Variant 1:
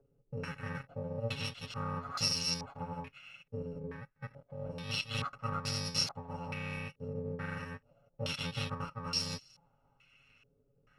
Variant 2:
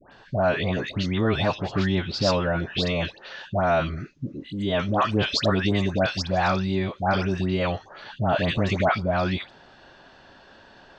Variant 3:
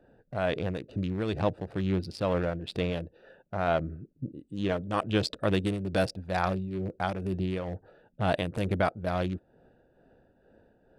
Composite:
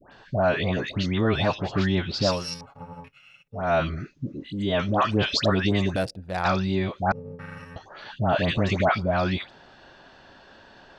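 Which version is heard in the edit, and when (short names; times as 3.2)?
2
2.37–3.63 from 1, crossfade 0.24 s
5.96–6.45 from 3
7.12–7.76 from 1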